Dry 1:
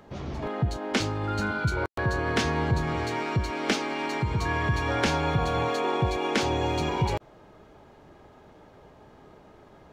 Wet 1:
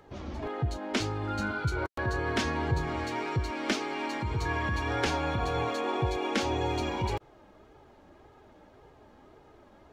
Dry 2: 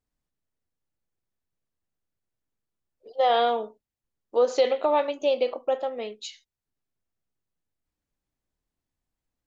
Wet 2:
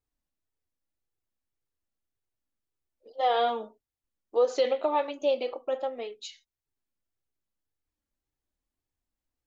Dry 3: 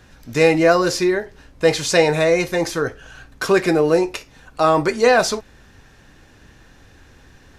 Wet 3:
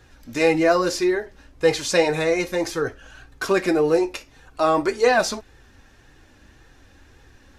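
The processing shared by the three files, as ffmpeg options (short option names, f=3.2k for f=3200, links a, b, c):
-af "flanger=delay=2.3:depth=1.4:regen=-32:speed=1.8:shape=sinusoidal"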